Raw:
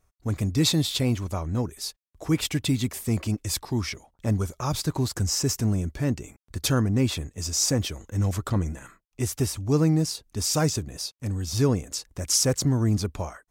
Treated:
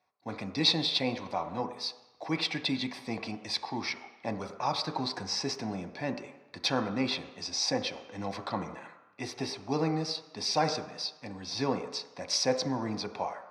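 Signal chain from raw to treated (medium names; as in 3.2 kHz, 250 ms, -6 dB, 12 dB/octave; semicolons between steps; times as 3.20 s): band-pass 760–3200 Hz; reverberation RT60 1.0 s, pre-delay 3 ms, DRR 6 dB; trim -2 dB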